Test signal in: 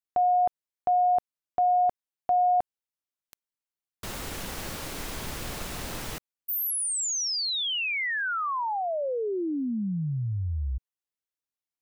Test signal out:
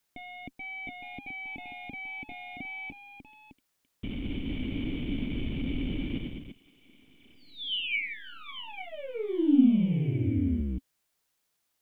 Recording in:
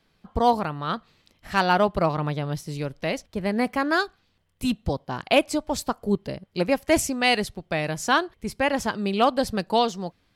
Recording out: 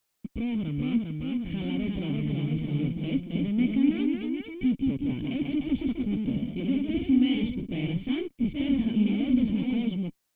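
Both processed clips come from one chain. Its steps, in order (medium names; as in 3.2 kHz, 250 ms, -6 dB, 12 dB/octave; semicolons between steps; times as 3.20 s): bass shelf 120 Hz +8 dB; fuzz box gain 36 dB, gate -44 dBFS; short-mantissa float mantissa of 2-bit; ever faster or slower copies 440 ms, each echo +1 st, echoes 3; cascade formant filter i; word length cut 12-bit, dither triangular; trim -5.5 dB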